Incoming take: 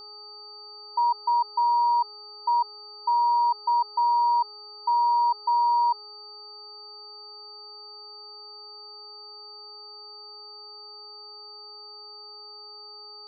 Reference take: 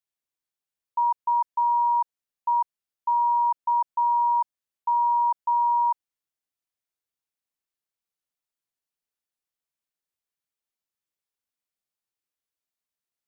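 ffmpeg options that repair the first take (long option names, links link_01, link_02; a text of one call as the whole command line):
ffmpeg -i in.wav -af "bandreject=frequency=418.5:width_type=h:width=4,bandreject=frequency=837:width_type=h:width=4,bandreject=frequency=1255.5:width_type=h:width=4,bandreject=frequency=4600:width=30" out.wav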